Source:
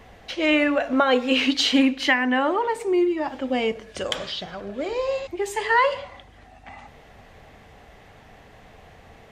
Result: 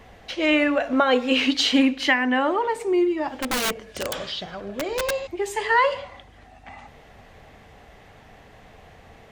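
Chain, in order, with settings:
0:03.40–0:05.11: wrap-around overflow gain 19 dB

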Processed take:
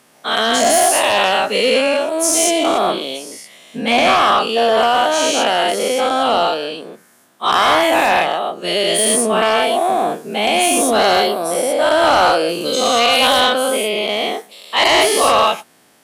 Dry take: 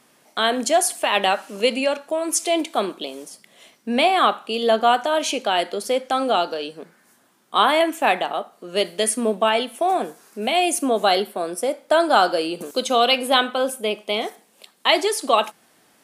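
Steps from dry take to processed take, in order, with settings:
every bin's largest magnitude spread in time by 240 ms
harmonic generator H 5 −11 dB, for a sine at 4.5 dBFS
level −8 dB

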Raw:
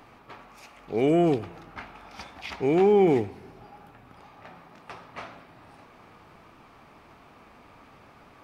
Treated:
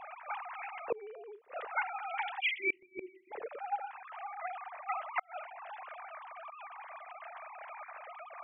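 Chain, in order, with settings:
three sine waves on the formant tracks
time-frequency box erased 0:02.40–0:03.32, 370–1,900 Hz
gate with flip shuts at −34 dBFS, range −36 dB
level +13.5 dB

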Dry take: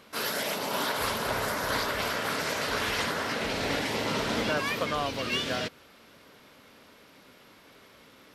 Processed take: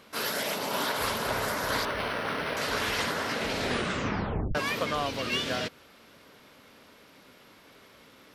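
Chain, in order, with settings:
0:01.85–0:02.57: linearly interpolated sample-rate reduction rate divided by 6×
0:03.61: tape stop 0.94 s

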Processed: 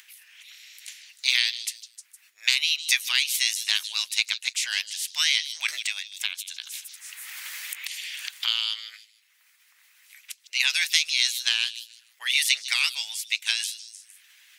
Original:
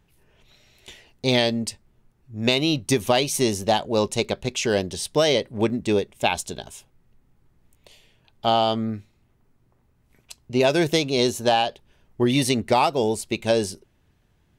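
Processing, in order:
ceiling on every frequency bin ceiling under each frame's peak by 18 dB
upward compression, threshold −33 dBFS
Chebyshev high-pass filter 2,000 Hz, order 3
echo through a band-pass that steps 154 ms, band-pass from 4,500 Hz, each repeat 0.7 octaves, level −9 dB
harmonic and percussive parts rebalanced percussive +7 dB
0:05.68–0:08.47: multiband upward and downward compressor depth 100%
level −5.5 dB

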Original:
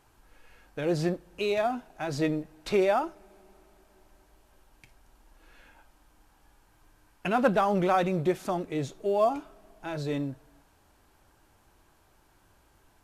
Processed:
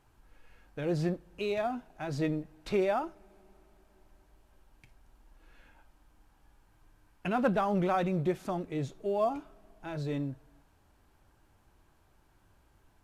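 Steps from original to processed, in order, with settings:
bass and treble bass +5 dB, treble −3 dB
level −5 dB

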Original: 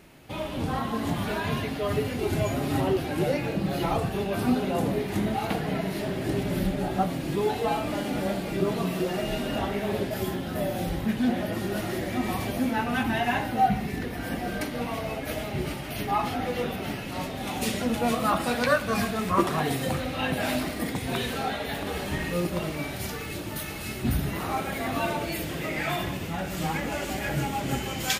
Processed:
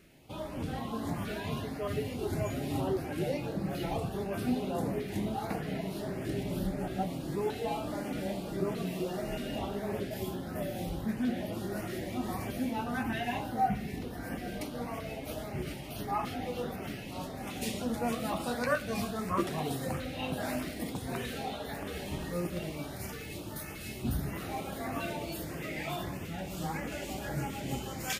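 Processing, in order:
auto-filter notch saw up 1.6 Hz 800–4,300 Hz
level −6.5 dB

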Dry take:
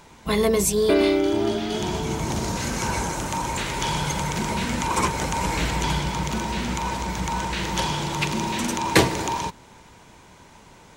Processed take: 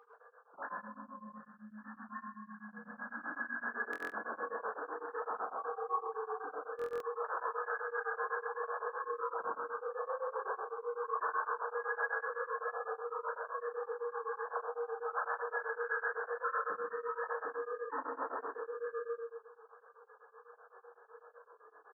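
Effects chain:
three sine waves on the formant tracks
ambience of single reflections 19 ms −7.5 dB, 66 ms −6 dB
convolution reverb RT60 0.60 s, pre-delay 5 ms, DRR −3.5 dB
reversed playback
downward compressor 6 to 1, threshold −23 dBFS, peak gain reduction 25.5 dB
reversed playback
wrong playback speed 15 ips tape played at 7.5 ips
brickwall limiter −20.5 dBFS, peak gain reduction 7.5 dB
high-pass filter 930 Hz 12 dB per octave
buffer that repeats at 0:03.91/0:06.77, samples 1,024, times 9
tremolo along a rectified sine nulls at 7.9 Hz
level +1 dB

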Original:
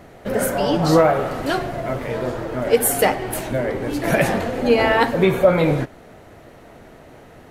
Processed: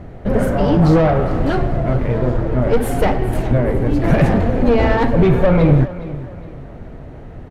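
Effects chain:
tube saturation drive 16 dB, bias 0.45
RIAA equalisation playback
repeating echo 414 ms, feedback 35%, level −16 dB
level +3 dB

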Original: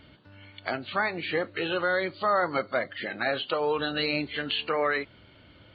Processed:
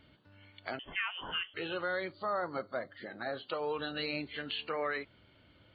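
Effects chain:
0:00.79–0:01.54: voice inversion scrambler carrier 3,300 Hz
0:02.12–0:03.49: parametric band 2,600 Hz −15 dB 0.64 octaves
level −8.5 dB

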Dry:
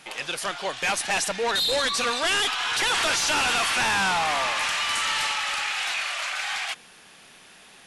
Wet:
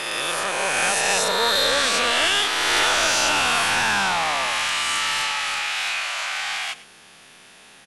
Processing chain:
peak hold with a rise ahead of every peak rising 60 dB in 2.55 s
single-tap delay 105 ms −18 dB
level −1.5 dB

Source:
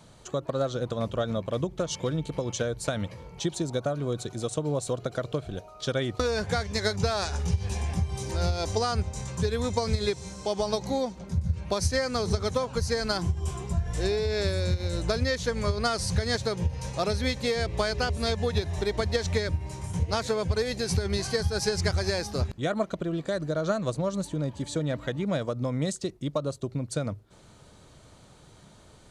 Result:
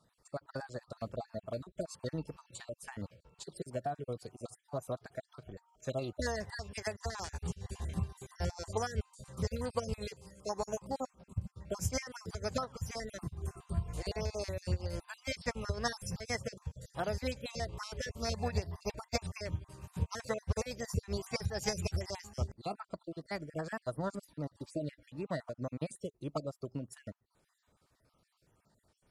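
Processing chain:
time-frequency cells dropped at random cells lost 34%
formants moved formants +3 semitones
expander for the loud parts 1.5 to 1, over −46 dBFS
level −5.5 dB

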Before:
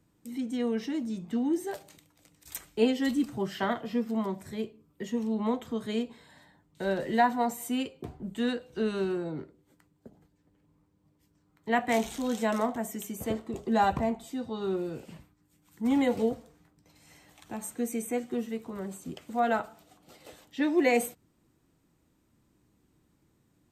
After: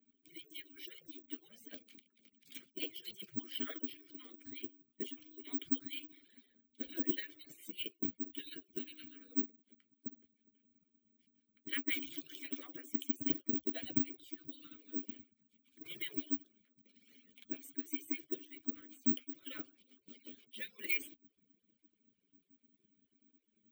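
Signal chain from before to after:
harmonic-percussive split with one part muted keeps percussive
formant filter i
parametric band 2,000 Hz −9 dB 0.37 octaves
bad sample-rate conversion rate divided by 2×, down none, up zero stuff
level +11 dB

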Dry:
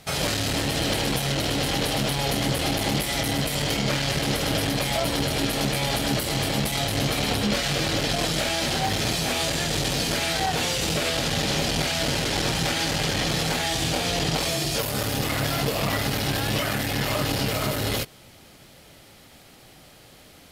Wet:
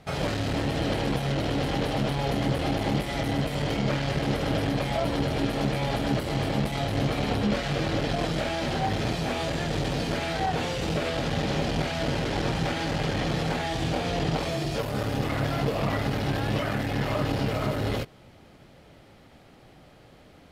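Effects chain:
low-pass filter 1,300 Hz 6 dB per octave

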